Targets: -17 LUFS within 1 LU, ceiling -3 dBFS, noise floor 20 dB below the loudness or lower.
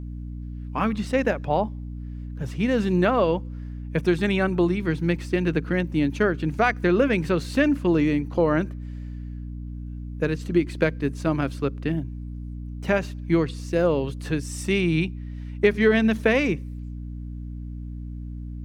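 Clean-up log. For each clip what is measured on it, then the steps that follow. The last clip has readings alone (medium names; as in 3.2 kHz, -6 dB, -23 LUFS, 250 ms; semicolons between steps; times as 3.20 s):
hum 60 Hz; highest harmonic 300 Hz; hum level -31 dBFS; loudness -23.5 LUFS; peak level -5.0 dBFS; loudness target -17.0 LUFS
-> hum notches 60/120/180/240/300 Hz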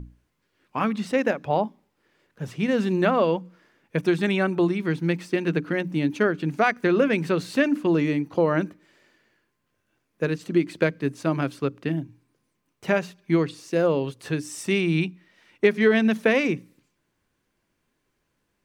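hum not found; loudness -24.0 LUFS; peak level -5.5 dBFS; loudness target -17.0 LUFS
-> trim +7 dB; peak limiter -3 dBFS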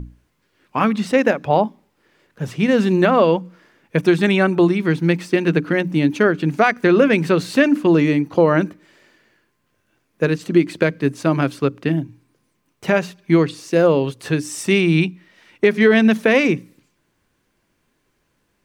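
loudness -17.5 LUFS; peak level -3.0 dBFS; noise floor -68 dBFS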